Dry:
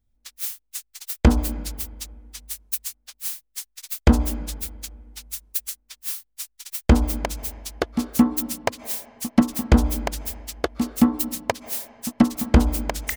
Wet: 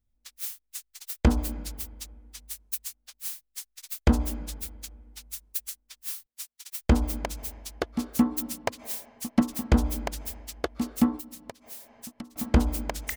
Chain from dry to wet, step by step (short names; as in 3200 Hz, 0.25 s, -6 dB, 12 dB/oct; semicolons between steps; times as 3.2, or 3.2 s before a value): 6.26–6.79 Bessel high-pass 190 Hz, order 2; 11.16–12.36 compressor 6:1, threshold -34 dBFS, peak gain reduction 22 dB; gain -5.5 dB